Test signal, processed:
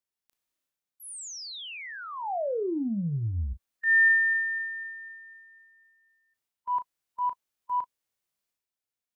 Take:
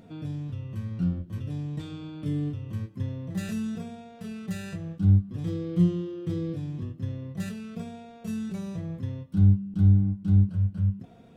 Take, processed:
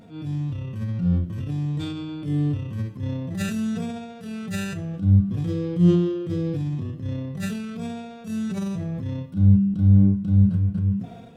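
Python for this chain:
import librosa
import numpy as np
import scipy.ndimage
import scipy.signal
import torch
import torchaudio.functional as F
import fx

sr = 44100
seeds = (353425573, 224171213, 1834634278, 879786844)

y = fx.transient(x, sr, attack_db=-9, sustain_db=7)
y = fx.hpss(y, sr, part='percussive', gain_db=-11)
y = fx.doubler(y, sr, ms=35.0, db=-12.5)
y = F.gain(torch.from_numpy(y), 6.0).numpy()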